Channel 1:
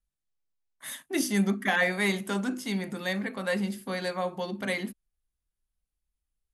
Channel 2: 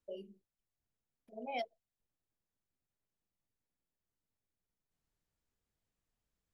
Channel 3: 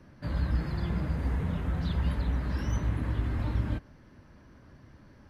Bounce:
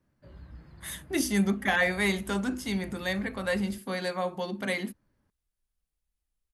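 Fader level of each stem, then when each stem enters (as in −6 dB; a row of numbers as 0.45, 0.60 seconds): 0.0, −14.0, −19.0 decibels; 0.00, 0.15, 0.00 seconds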